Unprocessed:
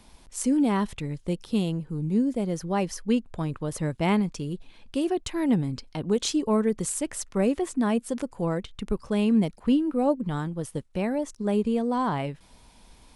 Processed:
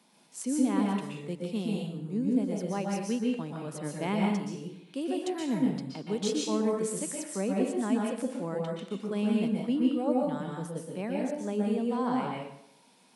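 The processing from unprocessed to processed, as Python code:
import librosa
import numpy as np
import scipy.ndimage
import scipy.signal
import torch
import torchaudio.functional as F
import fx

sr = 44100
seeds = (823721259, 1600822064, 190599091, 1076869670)

y = scipy.signal.sosfilt(scipy.signal.butter(6, 160.0, 'highpass', fs=sr, output='sos'), x)
y = fx.rev_plate(y, sr, seeds[0], rt60_s=0.69, hf_ratio=0.9, predelay_ms=110, drr_db=-1.5)
y = y * 10.0 ** (-8.0 / 20.0)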